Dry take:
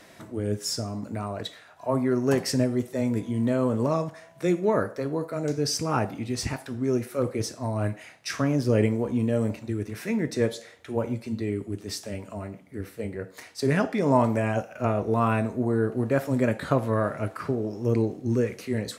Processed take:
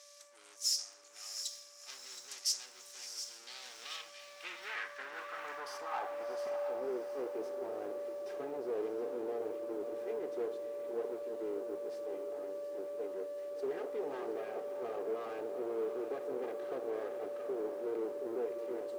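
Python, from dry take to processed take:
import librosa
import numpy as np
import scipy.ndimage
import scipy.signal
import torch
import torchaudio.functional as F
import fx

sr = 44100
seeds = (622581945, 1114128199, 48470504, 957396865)

p1 = fx.lower_of_two(x, sr, delay_ms=2.5)
p2 = p1 + 10.0 ** (-29.0 / 20.0) * np.sin(2.0 * np.pi * 580.0 * np.arange(len(p1)) / sr)
p3 = fx.tube_stage(p2, sr, drive_db=29.0, bias=0.5)
p4 = fx.low_shelf_res(p3, sr, hz=120.0, db=-13.0, q=1.5)
p5 = fx.filter_sweep_bandpass(p4, sr, from_hz=5800.0, to_hz=440.0, start_s=3.22, end_s=6.94, q=2.7)
p6 = fx.tilt_eq(p5, sr, slope=3.0)
p7 = p6 + fx.echo_diffused(p6, sr, ms=670, feedback_pct=42, wet_db=-10, dry=0)
p8 = fx.echo_crushed(p7, sr, ms=721, feedback_pct=35, bits=9, wet_db=-12.0)
y = p8 * 10.0 ** (1.0 / 20.0)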